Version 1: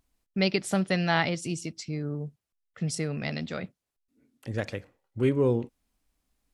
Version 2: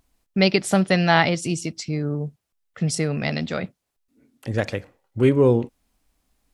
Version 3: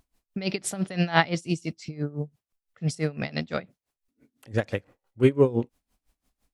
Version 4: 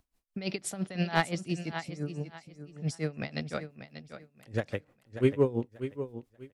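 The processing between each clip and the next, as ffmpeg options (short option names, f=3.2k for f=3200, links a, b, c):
-af "equalizer=f=750:w=1.5:g=2,volume=7dB"
-af "aeval=exprs='val(0)*pow(10,-20*(0.5-0.5*cos(2*PI*5.9*n/s))/20)':c=same"
-filter_complex "[0:a]aecho=1:1:588|1176|1764:0.282|0.0705|0.0176,acrossover=split=460|2800[a][b][c];[b]aeval=exprs='clip(val(0),-1,0.112)':c=same[d];[a][d][c]amix=inputs=3:normalize=0,volume=-5.5dB"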